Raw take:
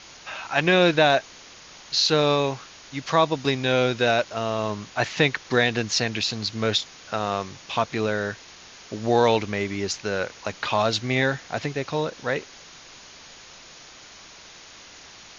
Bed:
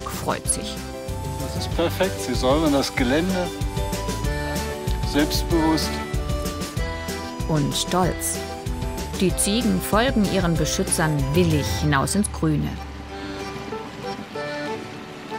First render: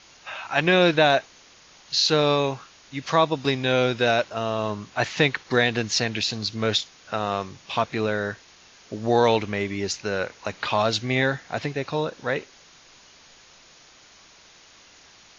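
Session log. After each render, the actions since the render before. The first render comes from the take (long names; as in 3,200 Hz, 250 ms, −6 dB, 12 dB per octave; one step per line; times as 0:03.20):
noise reduction from a noise print 6 dB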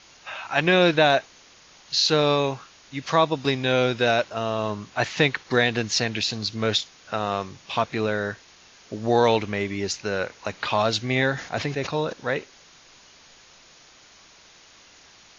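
0:11.32–0:12.13: level that may fall only so fast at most 97 dB per second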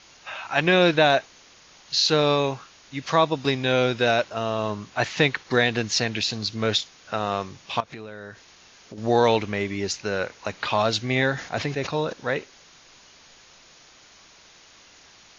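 0:07.80–0:08.98: downward compressor 5 to 1, threshold −35 dBFS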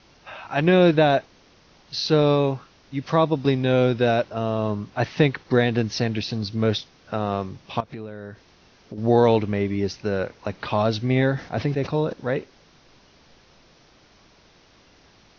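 Butterworth low-pass 6,000 Hz 96 dB per octave
tilt shelving filter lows +6.5 dB, about 710 Hz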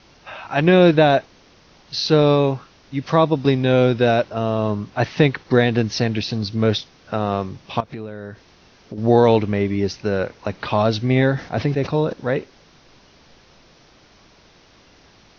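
level +3.5 dB
brickwall limiter −2 dBFS, peak gain reduction 1 dB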